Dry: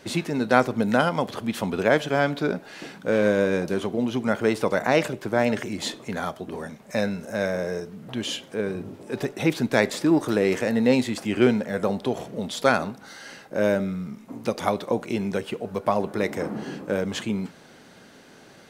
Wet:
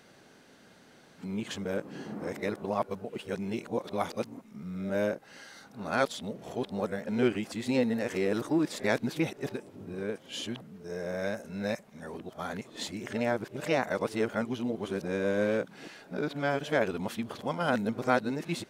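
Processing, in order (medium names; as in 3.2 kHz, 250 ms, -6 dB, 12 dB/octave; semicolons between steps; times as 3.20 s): reverse the whole clip; trim -7.5 dB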